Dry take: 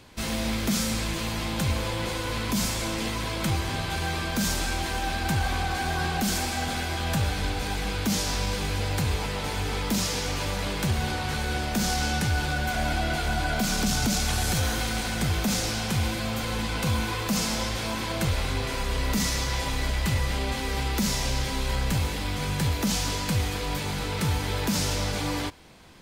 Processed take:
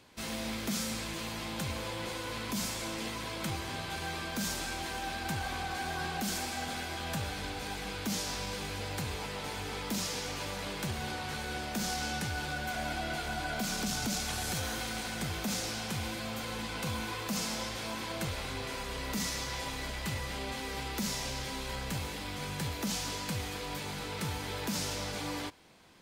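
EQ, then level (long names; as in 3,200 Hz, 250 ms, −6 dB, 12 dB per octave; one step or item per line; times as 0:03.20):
low-shelf EQ 94 Hz −11.5 dB
−7.0 dB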